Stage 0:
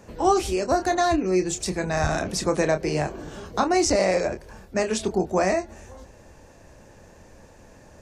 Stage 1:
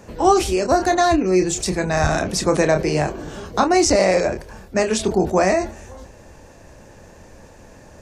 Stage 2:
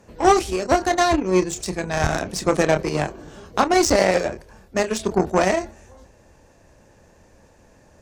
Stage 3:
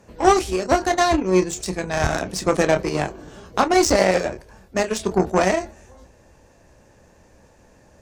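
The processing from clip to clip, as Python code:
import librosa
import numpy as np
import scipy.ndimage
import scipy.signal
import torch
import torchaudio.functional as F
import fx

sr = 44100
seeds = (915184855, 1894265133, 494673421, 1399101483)

y1 = fx.sustainer(x, sr, db_per_s=140.0)
y1 = y1 * 10.0 ** (5.0 / 20.0)
y2 = fx.cheby_harmonics(y1, sr, harmonics=(7,), levels_db=(-21,), full_scale_db=-2.0)
y3 = fx.doubler(y2, sr, ms=16.0, db=-13)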